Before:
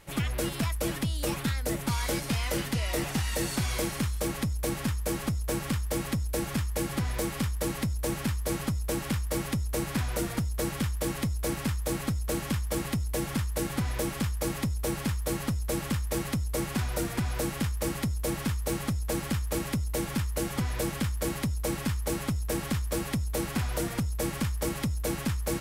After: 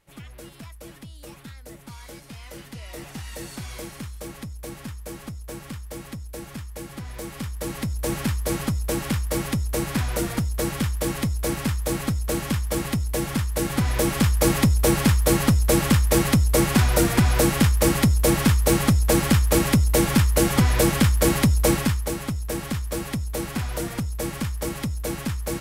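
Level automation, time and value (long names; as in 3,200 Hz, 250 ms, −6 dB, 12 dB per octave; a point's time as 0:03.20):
0:02.30 −12 dB
0:03.28 −6 dB
0:07.04 −6 dB
0:08.15 +5 dB
0:13.50 +5 dB
0:14.45 +11.5 dB
0:21.70 +11.5 dB
0:22.15 +2 dB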